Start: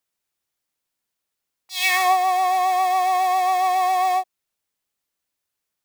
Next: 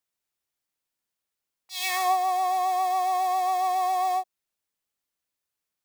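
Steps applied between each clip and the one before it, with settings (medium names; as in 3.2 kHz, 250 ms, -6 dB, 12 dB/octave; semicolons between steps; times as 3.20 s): dynamic bell 2.2 kHz, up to -7 dB, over -35 dBFS, Q 1.2; trim -4.5 dB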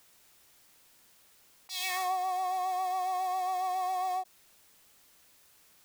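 level flattener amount 50%; trim -9 dB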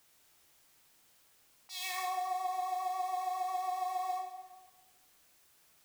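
plate-style reverb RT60 1.3 s, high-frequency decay 0.8×, DRR 2.5 dB; trim -6 dB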